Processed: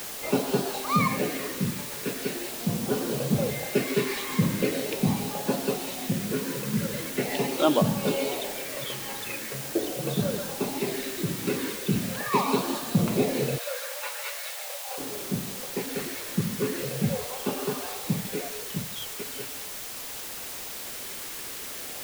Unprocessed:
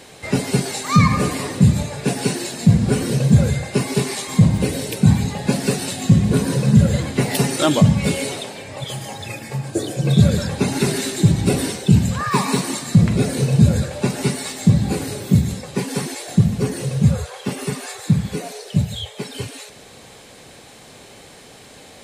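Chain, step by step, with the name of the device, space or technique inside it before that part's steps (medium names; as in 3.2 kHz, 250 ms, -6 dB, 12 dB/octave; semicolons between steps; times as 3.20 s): shortwave radio (band-pass 300–2900 Hz; tremolo 0.23 Hz, depth 50%; LFO notch sine 0.41 Hz 670–2100 Hz; white noise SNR 8 dB); 13.58–14.98 s: steep high-pass 500 Hz 96 dB/octave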